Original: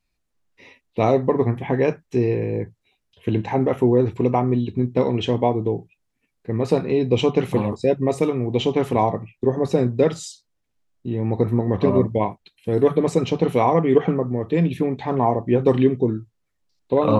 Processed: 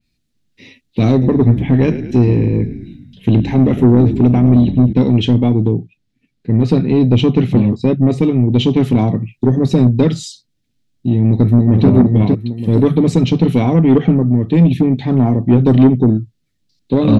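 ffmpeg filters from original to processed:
-filter_complex "[0:a]asettb=1/sr,asplit=3[a][b][c];[a]atrim=end=1.114[d];[b]atrim=start=1.11:end=4.93,asetpts=PTS-STARTPTS,afade=t=in:d=0.004:c=qsin,afade=t=out:st=3.816:d=0.004:c=qsin,asplit=7[e][f][g][h][i][j][k];[f]adelay=106,afreqshift=-50,volume=-13dB[l];[g]adelay=212,afreqshift=-100,volume=-17.6dB[m];[h]adelay=318,afreqshift=-150,volume=-22.2dB[n];[i]adelay=424,afreqshift=-200,volume=-26.7dB[o];[j]adelay=530,afreqshift=-250,volume=-31.3dB[p];[k]adelay=636,afreqshift=-300,volume=-35.9dB[q];[e][l][m][n][o][p][q]amix=inputs=7:normalize=0,atrim=end_sample=168462[r];[c]atrim=start=4.926[s];[d][r]acrossfade=d=0.004:c1=hsin:c2=qsin[t];[t][s]acrossfade=d=0.004:c1=qsin:c2=hsin,asettb=1/sr,asplit=3[u][v][w];[u]atrim=end=5.724[x];[v]atrim=start=5.72:end=8.55,asetpts=PTS-STARTPTS,afade=t=in:d=0.004:c=qsin,afade=t=out:st=2.826:d=0.004:c=qsin,highshelf=f=6.3k:g=-12[y];[w]atrim=start=8.546[z];[x][y]acrossfade=d=0.004:c1=hsin:c2=qsin[aa];[aa][z]acrossfade=d=0.004:c1=qsin:c2=hsin,asplit=2[ab][ac];[ac]afade=t=in:st=11.25:d=0.01,afade=t=out:st=11.88:d=0.01,aecho=0:1:460|920|1380|1840:0.630957|0.189287|0.0567862|0.0170358[ad];[ab][ad]amix=inputs=2:normalize=0,equalizer=f=125:t=o:w=1:g=8,equalizer=f=250:t=o:w=1:g=9,equalizer=f=500:t=o:w=1:g=-4,equalizer=f=1k:t=o:w=1:g=-11,equalizer=f=4k:t=o:w=1:g=7,acontrast=65,adynamicequalizer=threshold=0.0126:dfrequency=3400:dqfactor=0.7:tfrequency=3400:tqfactor=0.7:attack=5:release=100:ratio=0.375:range=2:mode=cutabove:tftype=highshelf,volume=-1.5dB"

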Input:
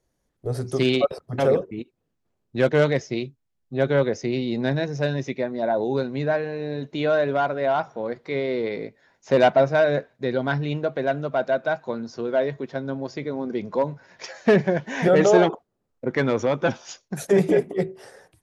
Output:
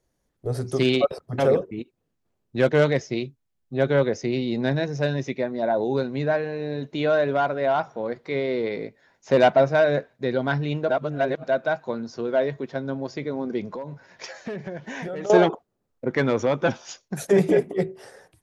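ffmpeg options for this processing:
-filter_complex "[0:a]asettb=1/sr,asplit=3[a][b][c];[a]atrim=end=13.684[d];[b]atrim=start=13.68:end=15.3,asetpts=PTS-STARTPTS,afade=t=in:d=0.004:c=qsin,afade=t=out:st=1.616:d=0.004:c=qsin,acompressor=threshold=-30dB:ratio=6:attack=3.2:release=140:knee=1:detection=peak[e];[c]atrim=start=15.296[f];[d][e]acrossfade=d=0.004:c1=hsin:c2=qsin[g];[g][f]acrossfade=d=0.004:c1=qsin:c2=hsin,asplit=3[h][i][j];[h]atrim=end=10.892[k];[i]atrim=start=10.888:end=11.432,asetpts=PTS-STARTPTS,areverse[l];[j]atrim=start=11.428[m];[k][l]acrossfade=d=0.004:c1=hsin:c2=hsin[n];[n][m]acrossfade=d=0.004:c1=hsin:c2=hsin"

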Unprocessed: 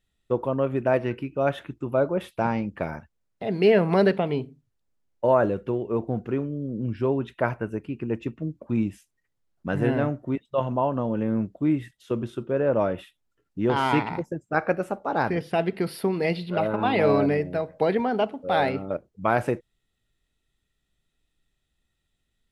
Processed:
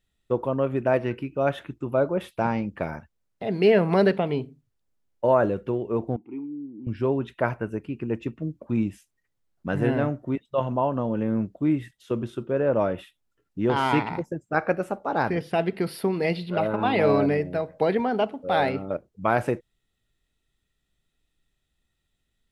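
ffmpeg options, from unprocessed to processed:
-filter_complex "[0:a]asettb=1/sr,asplit=3[a][b][c];[a]atrim=end=6.164[d];[b]atrim=start=6.16:end=6.87,asetpts=PTS-STARTPTS,afade=t=in:d=0.004:c=qsin,afade=t=out:st=0.706:d=0.004:c=qsin,asplit=3[e][f][g];[e]bandpass=f=300:t=q:w=8,volume=0dB[h];[f]bandpass=f=870:t=q:w=8,volume=-6dB[i];[g]bandpass=f=2.24k:t=q:w=8,volume=-9dB[j];[h][i][j]amix=inputs=3:normalize=0[k];[c]atrim=start=6.866[l];[d][k]acrossfade=d=0.004:c1=hsin:c2=qsin[m];[m][l]acrossfade=d=0.004:c1=qsin:c2=hsin"

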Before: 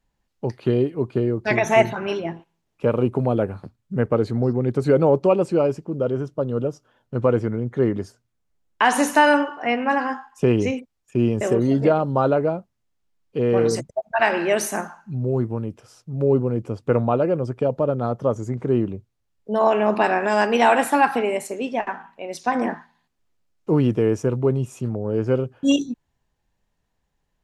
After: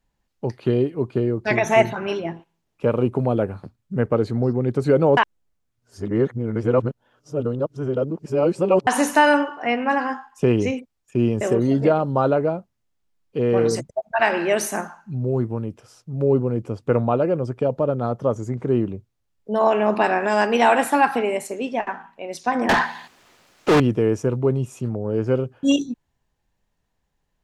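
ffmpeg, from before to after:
-filter_complex "[0:a]asettb=1/sr,asplit=3[a][b][c];[a]atrim=end=22.694[d];[b]atrim=start=22.69:end=23.8,asetpts=PTS-STARTPTS,afade=t=in:d=0.004:c=qsin,afade=t=out:st=1.106:d=0.004:c=qsin,asplit=2[e][f];[f]highpass=f=720:p=1,volume=38dB,asoftclip=type=tanh:threshold=-8.5dB[g];[e][g]amix=inputs=2:normalize=0,lowpass=f=4.1k:p=1,volume=-6dB[h];[c]atrim=start=23.796[i];[d][h]acrossfade=d=0.004:c1=hsin:c2=qsin[j];[j][i]acrossfade=d=0.004:c1=qsin:c2=hsin,asplit=3[k][l][m];[k]atrim=end=5.172[n];[l]atrim=start=5.168:end=8.872,asetpts=PTS-STARTPTS,areverse[o];[m]atrim=start=8.868[p];[n][o]acrossfade=d=0.004:c1=hsin:c2=hsin[q];[q][p]acrossfade=d=0.004:c1=hsin:c2=hsin"

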